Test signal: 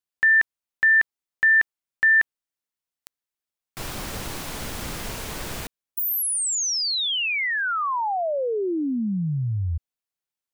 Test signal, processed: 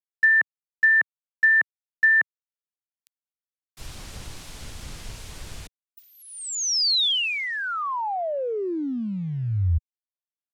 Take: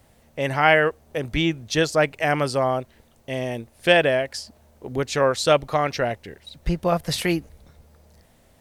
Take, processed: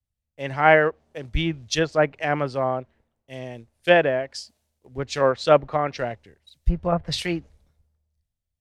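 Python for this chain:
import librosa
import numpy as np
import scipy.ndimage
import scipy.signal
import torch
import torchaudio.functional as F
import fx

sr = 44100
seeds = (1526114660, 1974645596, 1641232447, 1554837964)

y = fx.quant_companded(x, sr, bits=6)
y = fx.env_lowpass_down(y, sr, base_hz=1900.0, full_db=-16.0)
y = fx.band_widen(y, sr, depth_pct=100)
y = y * librosa.db_to_amplitude(-2.5)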